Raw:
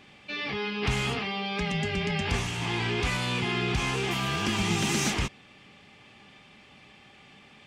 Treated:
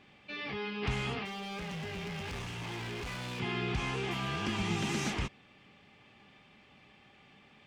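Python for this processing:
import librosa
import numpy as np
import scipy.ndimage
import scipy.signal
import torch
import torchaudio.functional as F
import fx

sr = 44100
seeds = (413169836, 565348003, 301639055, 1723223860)

y = fx.high_shelf(x, sr, hz=5600.0, db=-10.0)
y = fx.clip_hard(y, sr, threshold_db=-32.0, at=(1.25, 3.4))
y = y * librosa.db_to_amplitude(-5.5)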